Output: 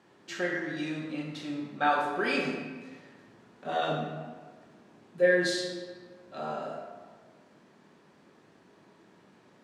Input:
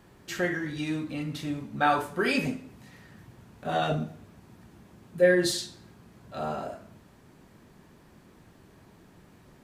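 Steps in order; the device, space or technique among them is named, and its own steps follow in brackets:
supermarket ceiling speaker (band-pass filter 220–6,600 Hz; convolution reverb RT60 1.6 s, pre-delay 17 ms, DRR 2 dB)
level −3.5 dB

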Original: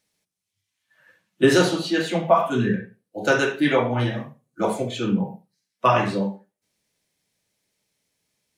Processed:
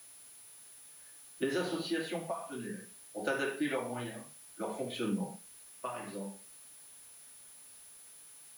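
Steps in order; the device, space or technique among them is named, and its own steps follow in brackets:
medium wave at night (band-pass filter 180–4,300 Hz; downward compressor, threshold −22 dBFS, peak gain reduction 11 dB; amplitude tremolo 0.58 Hz, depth 62%; steady tone 10,000 Hz −46 dBFS; white noise bed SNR 20 dB)
level −7 dB

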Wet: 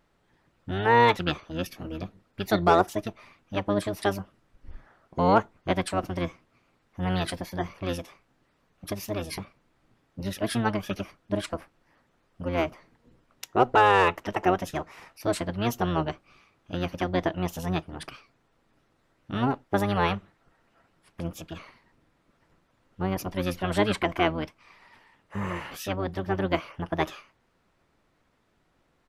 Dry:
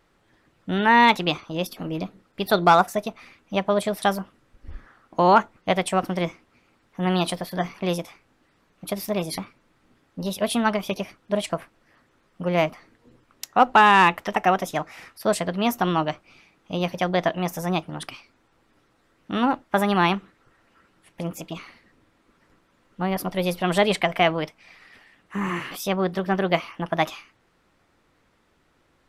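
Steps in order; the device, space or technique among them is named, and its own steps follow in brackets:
octave pedal (pitch-shifted copies added −12 semitones −2 dB)
level −6.5 dB

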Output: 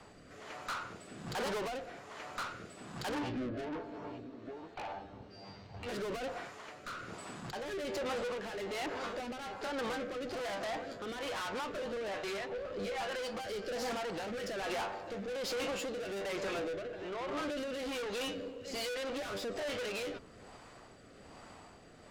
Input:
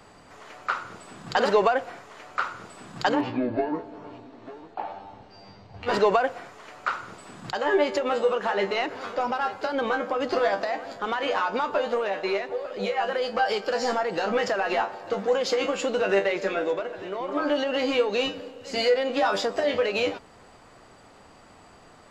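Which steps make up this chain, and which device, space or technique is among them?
overdriven rotary cabinet (tube saturation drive 35 dB, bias 0.4; rotating-speaker cabinet horn 1.2 Hz)
level +1 dB

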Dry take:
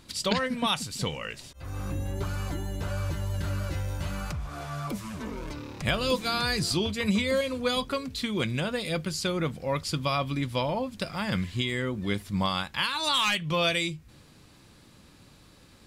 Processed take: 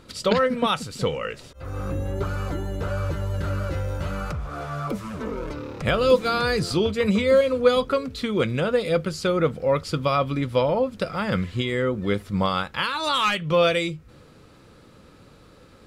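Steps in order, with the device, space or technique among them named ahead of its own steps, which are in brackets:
inside a helmet (high-shelf EQ 3,500 Hz −8 dB; hollow resonant body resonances 480/1,300 Hz, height 9 dB, ringing for 20 ms)
level +3.5 dB

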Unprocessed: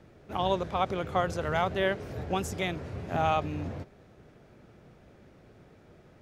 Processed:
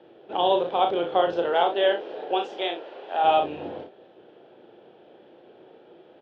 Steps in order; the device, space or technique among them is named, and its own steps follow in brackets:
phone earpiece (loudspeaker in its box 340–3,600 Hz, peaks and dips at 350 Hz +8 dB, 500 Hz +6 dB, 810 Hz +6 dB, 1,200 Hz −6 dB, 2,100 Hz −9 dB, 3,200 Hz +9 dB)
0:01.48–0:03.23: high-pass filter 230 Hz → 660 Hz 12 dB per octave
ambience of single reflections 35 ms −5 dB, 59 ms −11 dB
level +2.5 dB

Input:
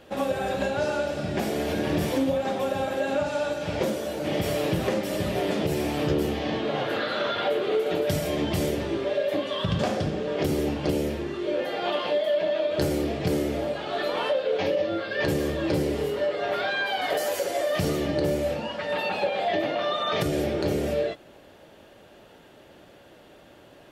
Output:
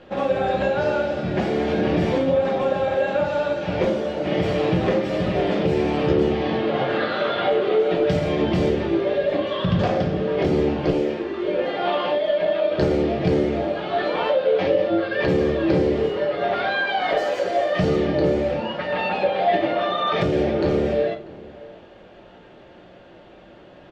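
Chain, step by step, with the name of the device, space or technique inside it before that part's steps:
0:10.91–0:11.44: Butterworth high-pass 230 Hz 72 dB per octave
shout across a valley (high-frequency loss of the air 170 metres; slap from a distant wall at 110 metres, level −20 dB)
rectangular room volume 180 cubic metres, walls furnished, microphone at 0.94 metres
level +3.5 dB

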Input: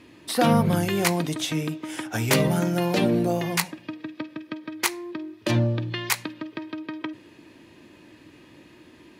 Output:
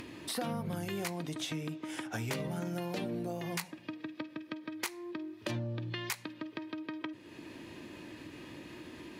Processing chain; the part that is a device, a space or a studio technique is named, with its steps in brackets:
0:01.10–0:02.66: high-shelf EQ 8,100 Hz −5 dB
upward and downward compression (upward compression, threshold −31 dBFS; downward compressor 6 to 1, threshold −27 dBFS, peak gain reduction 12 dB)
level −6.5 dB

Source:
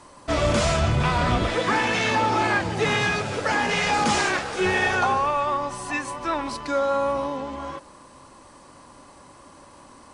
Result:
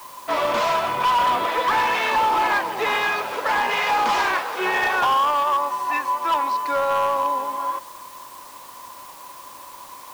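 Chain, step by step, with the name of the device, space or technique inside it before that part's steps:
drive-through speaker (band-pass filter 460–3,900 Hz; parametric band 1,000 Hz +12 dB 0.26 octaves; hard clipping −17 dBFS, distortion −14 dB; white noise bed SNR 23 dB)
level +1.5 dB

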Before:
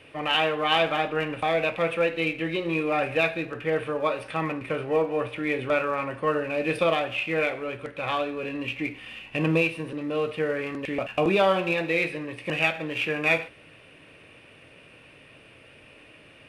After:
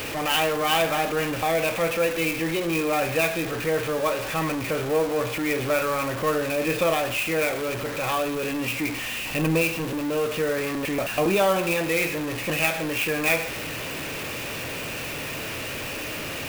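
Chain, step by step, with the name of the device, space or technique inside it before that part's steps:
early CD player with a faulty converter (converter with a step at zero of −25 dBFS; converter with an unsteady clock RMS 0.027 ms)
level −1.5 dB

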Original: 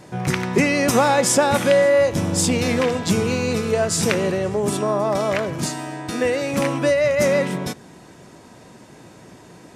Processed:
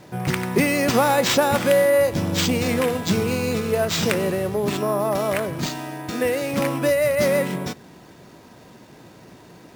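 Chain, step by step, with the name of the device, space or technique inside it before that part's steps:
crushed at another speed (tape speed factor 0.5×; decimation without filtering 8×; tape speed factor 2×)
level −1.5 dB

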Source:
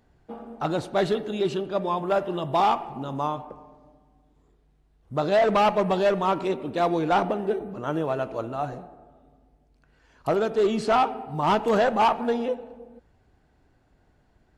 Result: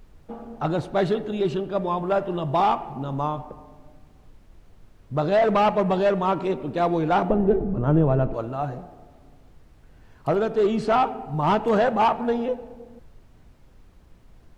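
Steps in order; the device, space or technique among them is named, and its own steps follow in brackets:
noise gate with hold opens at −51 dBFS
car interior (parametric band 140 Hz +5 dB 0.77 octaves; high-shelf EQ 3,800 Hz −8 dB; brown noise bed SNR 24 dB)
0:07.30–0:08.34: spectral tilt −3.5 dB per octave
level +1 dB

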